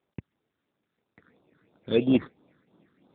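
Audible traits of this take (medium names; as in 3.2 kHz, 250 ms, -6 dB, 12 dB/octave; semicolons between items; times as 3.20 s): aliases and images of a low sample rate 3 kHz, jitter 0%; phasing stages 8, 3 Hz, lowest notch 730–2100 Hz; tremolo triangle 3.3 Hz, depth 50%; AMR-NB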